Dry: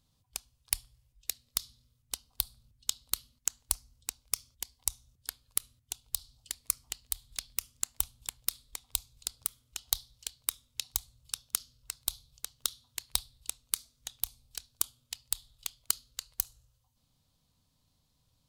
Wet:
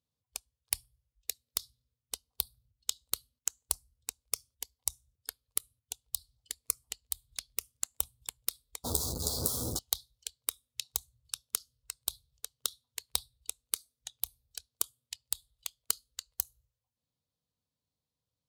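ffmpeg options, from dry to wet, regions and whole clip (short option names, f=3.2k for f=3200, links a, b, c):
-filter_complex "[0:a]asettb=1/sr,asplit=3[a][b][c];[a]atrim=end=8.844[d];[b]atrim=start=8.84:end=9.79,asetpts=PTS-STARTPTS,afade=t=in:d=0.004:c=qsin,afade=t=out:st=0.946:d=0.004:c=qsin,aeval=exprs='val(0)+0.5*0.0473*sgn(val(0))':c=same,asuperstop=centerf=2300:order=4:qfactor=0.71,asplit=2[e][f];[f]adelay=12,volume=-5.5dB[g];[e][g]amix=inputs=2:normalize=0,atrim=end_sample=41895[h];[c]atrim=start=9.786[i];[d][h]acrossfade=d=0.004:c1=hsin:c2=qsin[j];[j][i]acrossfade=d=0.004:c1=qsin:c2=hsin,afftdn=nr=15:nf=-49,highpass=64,equalizer=f=460:w=2:g=8,volume=-1.5dB"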